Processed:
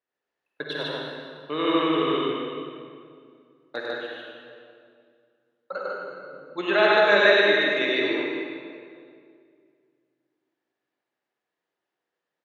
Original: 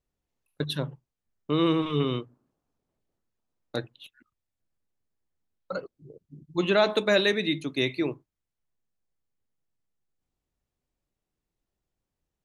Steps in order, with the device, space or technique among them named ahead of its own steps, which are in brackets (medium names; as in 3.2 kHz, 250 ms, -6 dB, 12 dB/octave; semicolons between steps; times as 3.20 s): station announcement (band-pass 440–3600 Hz; peaking EQ 1.7 kHz +8.5 dB 0.28 oct; loudspeakers at several distances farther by 34 m -4 dB, 51 m -2 dB; reverberation RT60 2.3 s, pre-delay 40 ms, DRR -1.5 dB)